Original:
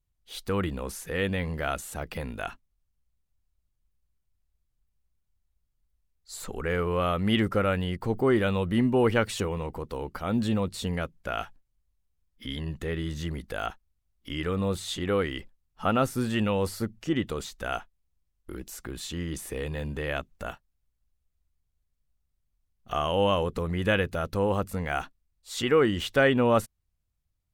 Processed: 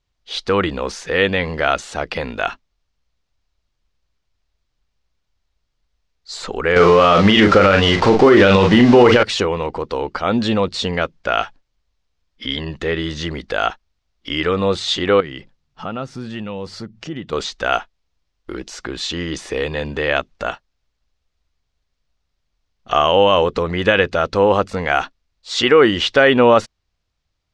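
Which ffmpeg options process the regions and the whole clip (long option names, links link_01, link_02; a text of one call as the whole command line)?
ffmpeg -i in.wav -filter_complex "[0:a]asettb=1/sr,asplit=3[link_01][link_02][link_03];[link_01]atrim=end=6.764[link_04];[link_02]atrim=start=6.76:end=9.23,asetpts=PTS-STARTPTS,afade=type=in:duration=0.004:curve=qsin,afade=type=out:start_time=2.466:duration=0.004:curve=qsin,aeval=exprs='val(0)+0.5*0.0178*sgn(val(0))':channel_layout=same,acontrast=55,asplit=2[link_05][link_06];[link_06]adelay=41,volume=-6.5dB[link_07];[link_05][link_07]amix=inputs=2:normalize=0,atrim=end_sample=108927[link_08];[link_03]atrim=start=9.226[link_09];[link_04][link_08]acrossfade=duration=0.004:curve1=hsin:curve2=qsin[link_10];[link_10][link_09]acrossfade=duration=0.004:curve1=qsin:curve2=hsin,asettb=1/sr,asplit=3[link_11][link_12][link_13];[link_11]atrim=end=15.204[link_14];[link_12]atrim=start=15.2:end=17.33,asetpts=PTS-STARTPTS,afade=type=in:duration=0.004:curve=qsin,afade=type=out:start_time=2.126:duration=0.004:curve=qsin,equalizer=frequency=150:width=1.1:gain=12.5,acompressor=threshold=-46dB:ratio=2:attack=3.2:release=140:knee=1:detection=peak[link_15];[link_13]atrim=start=17.326[link_16];[link_14][link_15]acrossfade=duration=0.004:curve1=hsin:curve2=qsin[link_17];[link_17][link_16]acrossfade=duration=0.004:curve1=qsin:curve2=hsin,lowpass=frequency=5400:width=0.5412,lowpass=frequency=5400:width=1.3066,bass=frequency=250:gain=-10,treble=frequency=4000:gain=4,alimiter=level_in=14.5dB:limit=-1dB:release=50:level=0:latency=1,volume=-1dB" out.wav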